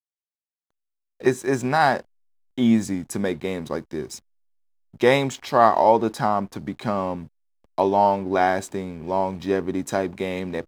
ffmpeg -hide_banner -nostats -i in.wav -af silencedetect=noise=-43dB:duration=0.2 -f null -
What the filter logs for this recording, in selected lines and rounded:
silence_start: 0.00
silence_end: 1.20 | silence_duration: 1.20
silence_start: 2.02
silence_end: 2.58 | silence_duration: 0.56
silence_start: 4.19
silence_end: 4.94 | silence_duration: 0.75
silence_start: 7.27
silence_end: 7.78 | silence_duration: 0.51